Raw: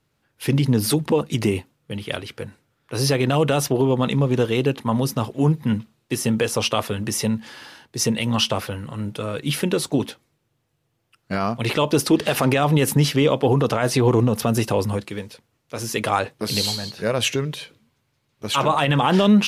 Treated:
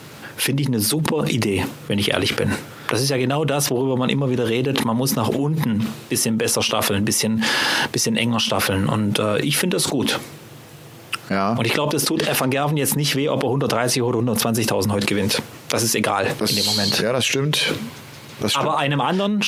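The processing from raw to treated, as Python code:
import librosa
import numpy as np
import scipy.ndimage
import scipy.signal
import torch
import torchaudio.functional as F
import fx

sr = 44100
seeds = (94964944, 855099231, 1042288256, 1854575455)

y = scipy.signal.sosfilt(scipy.signal.butter(2, 130.0, 'highpass', fs=sr, output='sos'), x)
y = fx.env_flatten(y, sr, amount_pct=100)
y = y * 10.0 ** (-7.5 / 20.0)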